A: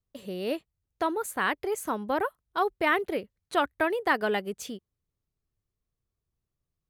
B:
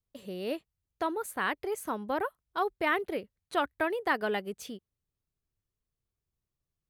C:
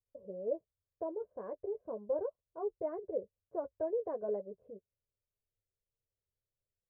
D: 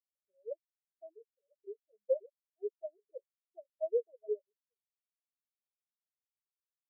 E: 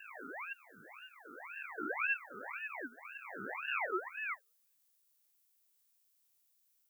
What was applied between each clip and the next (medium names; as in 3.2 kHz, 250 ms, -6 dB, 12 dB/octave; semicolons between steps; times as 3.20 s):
dynamic bell 7.1 kHz, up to -5 dB, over -59 dBFS, Q 4.1; trim -3.5 dB
four-pole ladder low-pass 650 Hz, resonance 55%; comb 1.9 ms, depth 49%; flange 2 Hz, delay 8.6 ms, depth 1.9 ms, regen -26%; trim +3 dB
spectral contrast expander 4:1; trim +2.5 dB
reverse spectral sustain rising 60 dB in 2.28 s; tilt EQ +5.5 dB/octave; ring modulator with a swept carrier 1.5 kHz, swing 45%, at 1.9 Hz; trim +1.5 dB